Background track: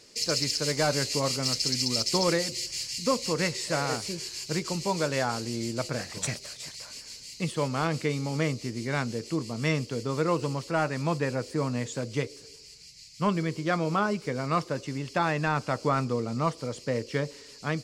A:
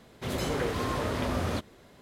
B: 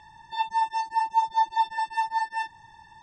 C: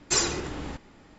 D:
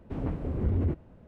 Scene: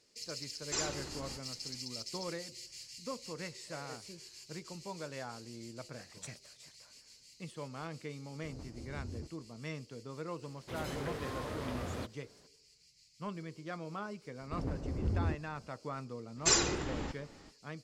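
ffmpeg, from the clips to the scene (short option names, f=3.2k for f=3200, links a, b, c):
-filter_complex "[3:a]asplit=2[a][b];[4:a]asplit=2[c][d];[0:a]volume=-15.5dB[e];[a]atrim=end=1.18,asetpts=PTS-STARTPTS,volume=-12dB,afade=t=in:d=0.004:c=hsin,afade=t=out:st=1.176:d=0.004:c=hsin,adelay=610[f];[c]atrim=end=1.27,asetpts=PTS-STARTPTS,volume=-17dB,afade=t=in:d=0.004:c=hsin,afade=t=out:st=1.266:d=0.004:c=hsin,adelay=8330[g];[1:a]atrim=end=2.01,asetpts=PTS-STARTPTS,volume=-10dB,afade=t=in:d=0.004:c=hsin,afade=t=out:st=2.006:d=0.004:c=hsin,adelay=10460[h];[d]atrim=end=1.27,asetpts=PTS-STARTPTS,volume=-6dB,afade=t=in:d=0.004:c=hsin,afade=t=out:st=1.266:d=0.004:c=hsin,adelay=14410[i];[b]atrim=end=1.18,asetpts=PTS-STARTPTS,volume=-3dB,afade=t=in:d=0.05,afade=t=out:st=1.13:d=0.05,adelay=16350[j];[e][f][g][h][i][j]amix=inputs=6:normalize=0"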